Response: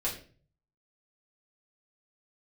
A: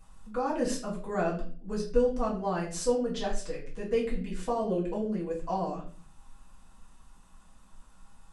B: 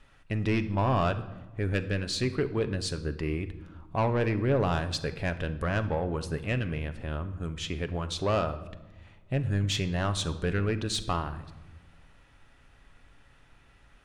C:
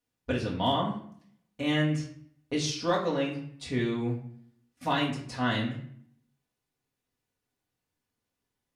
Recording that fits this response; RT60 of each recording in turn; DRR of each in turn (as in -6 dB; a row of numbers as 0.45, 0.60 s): A; 0.40 s, not exponential, 0.60 s; -6.5, 9.0, -4.0 dB